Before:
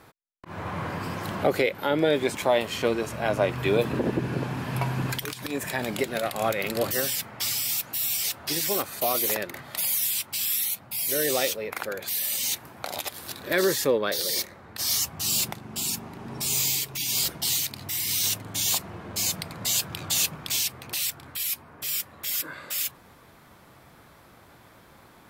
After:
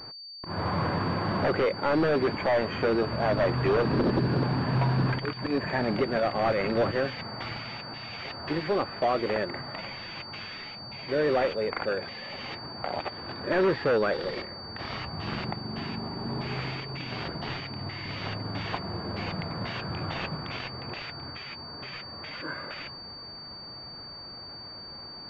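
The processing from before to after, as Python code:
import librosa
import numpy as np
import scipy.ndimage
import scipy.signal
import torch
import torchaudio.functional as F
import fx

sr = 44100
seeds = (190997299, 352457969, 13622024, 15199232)

p1 = fx.air_absorb(x, sr, metres=140.0)
p2 = fx.fold_sine(p1, sr, drive_db=11, ceiling_db=-11.0)
p3 = p1 + (p2 * 10.0 ** (-5.0 / 20.0))
p4 = fx.pwm(p3, sr, carrier_hz=4600.0)
y = p4 * 10.0 ** (-7.0 / 20.0)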